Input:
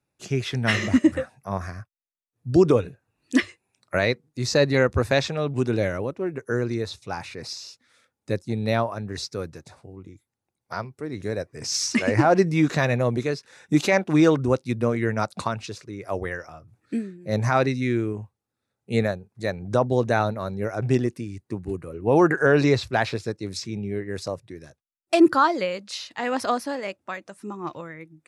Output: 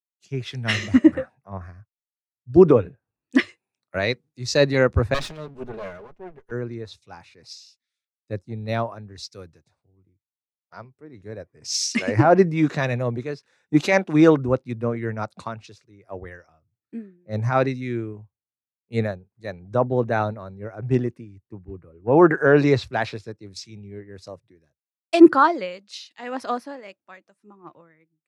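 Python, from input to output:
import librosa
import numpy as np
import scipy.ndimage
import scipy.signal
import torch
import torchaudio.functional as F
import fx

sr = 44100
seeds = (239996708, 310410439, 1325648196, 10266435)

y = fx.lower_of_two(x, sr, delay_ms=4.8, at=(5.14, 6.51))
y = fx.high_shelf(y, sr, hz=5200.0, db=-10.0)
y = fx.band_widen(y, sr, depth_pct=100)
y = y * librosa.db_to_amplitude(-2.0)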